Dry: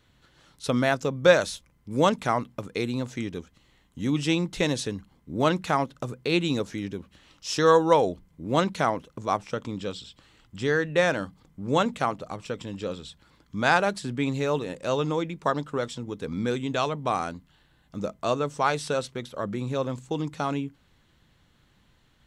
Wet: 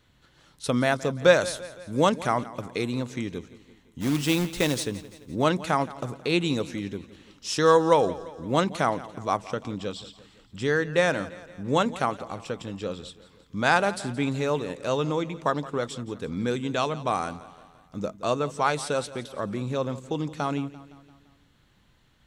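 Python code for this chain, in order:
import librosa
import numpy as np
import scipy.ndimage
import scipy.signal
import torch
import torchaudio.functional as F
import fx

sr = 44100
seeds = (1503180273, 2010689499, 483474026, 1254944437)

y = fx.dynamic_eq(x, sr, hz=9100.0, q=3.2, threshold_db=-57.0, ratio=4.0, max_db=6)
y = fx.quant_companded(y, sr, bits=4, at=(4.0, 4.83), fade=0.02)
y = fx.echo_feedback(y, sr, ms=171, feedback_pct=54, wet_db=-17.5)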